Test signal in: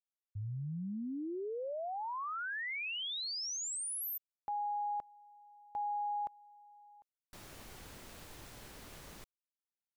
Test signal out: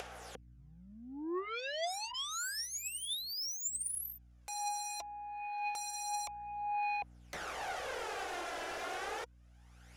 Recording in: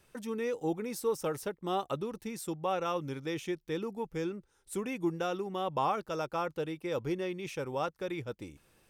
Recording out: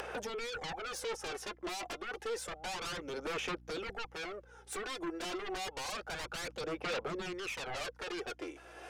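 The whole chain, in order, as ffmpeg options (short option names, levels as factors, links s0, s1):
-af "highshelf=f=3500:g=-7.5,bandreject=f=980:w=14,acompressor=mode=upward:threshold=0.00355:ratio=4:attack=56:release=731:knee=2.83:detection=peak,alimiter=level_in=1.5:limit=0.0631:level=0:latency=1:release=278,volume=0.668,acompressor=threshold=0.00562:ratio=2:attack=4.2:release=575:knee=6:detection=rms,highpass=f=410:w=0.5412,highpass=f=410:w=1.3066,equalizer=f=490:t=q:w=4:g=5,equalizer=f=770:t=q:w=4:g=8,equalizer=f=1500:t=q:w=4:g=5,equalizer=f=4200:t=q:w=4:g=-6,equalizer=f=8300:t=q:w=4:g=-8,lowpass=f=9800:w=0.5412,lowpass=f=9800:w=1.3066,asoftclip=type=tanh:threshold=0.0119,aeval=exprs='val(0)+0.000126*(sin(2*PI*60*n/s)+sin(2*PI*2*60*n/s)/2+sin(2*PI*3*60*n/s)/3+sin(2*PI*4*60*n/s)/4+sin(2*PI*5*60*n/s)/5)':c=same,aeval=exprs='0.0126*sin(PI/2*3.98*val(0)/0.0126)':c=same,aphaser=in_gain=1:out_gain=1:delay=3:decay=0.52:speed=0.29:type=sinusoidal"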